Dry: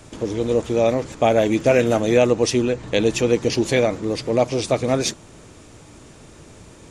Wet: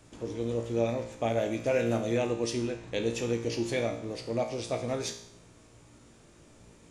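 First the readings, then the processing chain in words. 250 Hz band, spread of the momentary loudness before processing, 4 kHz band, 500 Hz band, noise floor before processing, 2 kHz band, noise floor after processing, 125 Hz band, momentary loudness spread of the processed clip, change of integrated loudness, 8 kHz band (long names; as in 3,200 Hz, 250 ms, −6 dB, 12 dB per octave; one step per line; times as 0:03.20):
−11.0 dB, 5 LU, −11.5 dB, −12.0 dB, −46 dBFS, −11.5 dB, −57 dBFS, −9.5 dB, 6 LU, −11.5 dB, −12.0 dB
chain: tuned comb filter 58 Hz, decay 0.65 s, harmonics all, mix 80%
level −3.5 dB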